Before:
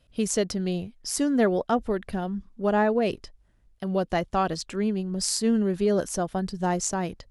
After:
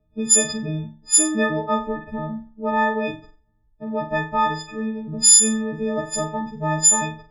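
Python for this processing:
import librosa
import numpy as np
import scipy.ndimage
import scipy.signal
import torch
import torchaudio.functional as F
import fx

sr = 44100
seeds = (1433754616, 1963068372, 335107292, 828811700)

y = fx.freq_snap(x, sr, grid_st=6)
y = fx.room_flutter(y, sr, wall_m=7.6, rt60_s=0.39)
y = fx.env_lowpass(y, sr, base_hz=540.0, full_db=-10.5)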